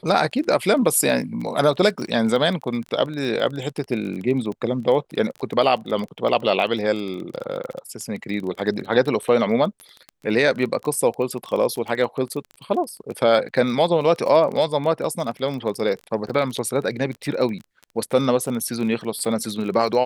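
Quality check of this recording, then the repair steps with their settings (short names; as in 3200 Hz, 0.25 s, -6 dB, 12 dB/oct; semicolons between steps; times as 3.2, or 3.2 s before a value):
crackle 23/s -28 dBFS
16.29–16.3 gap 5.9 ms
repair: de-click; interpolate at 16.29, 5.9 ms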